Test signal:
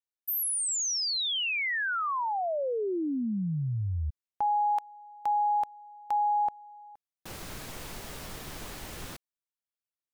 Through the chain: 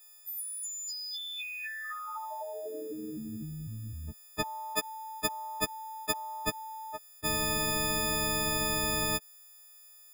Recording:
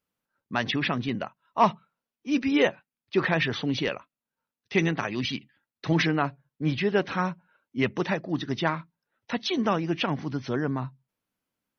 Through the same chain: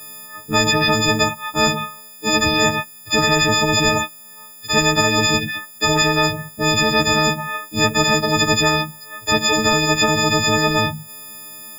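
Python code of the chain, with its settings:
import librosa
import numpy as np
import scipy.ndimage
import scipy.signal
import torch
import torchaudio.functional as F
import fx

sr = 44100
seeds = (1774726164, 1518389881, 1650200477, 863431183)

y = fx.freq_snap(x, sr, grid_st=6)
y = fx.spectral_comp(y, sr, ratio=10.0)
y = F.gain(torch.from_numpy(y), 2.0).numpy()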